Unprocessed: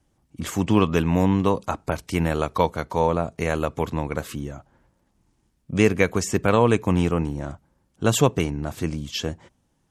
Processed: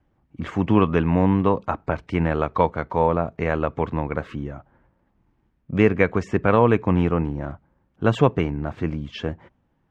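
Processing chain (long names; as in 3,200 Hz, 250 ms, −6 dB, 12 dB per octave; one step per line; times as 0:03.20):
Chebyshev low-pass filter 1,900 Hz, order 2
level +2 dB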